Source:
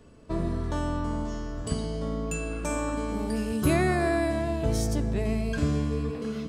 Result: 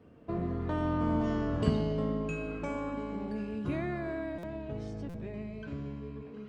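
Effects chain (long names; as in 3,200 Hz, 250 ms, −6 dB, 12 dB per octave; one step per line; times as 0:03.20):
source passing by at 0:01.45, 13 m/s, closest 4.4 metres
high-pass filter 90 Hz 12 dB per octave
parametric band 2,600 Hz +5 dB 1 octave
in parallel at +1.5 dB: downward compressor, threshold −47 dBFS, peak gain reduction 19.5 dB
on the sum: head-to-tape spacing loss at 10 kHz 29 dB
on a send: delay with a high-pass on its return 357 ms, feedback 79%, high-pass 3,300 Hz, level −24 dB
on the sum: buffer that repeats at 0:04.38/0:05.09, samples 256, times 8
level +5 dB
Opus 32 kbit/s 48,000 Hz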